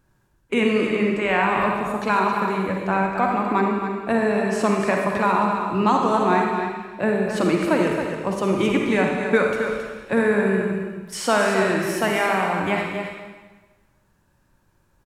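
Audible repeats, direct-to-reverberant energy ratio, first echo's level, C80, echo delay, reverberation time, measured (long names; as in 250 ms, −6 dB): 1, −0.5 dB, −7.5 dB, 2.0 dB, 269 ms, 1.3 s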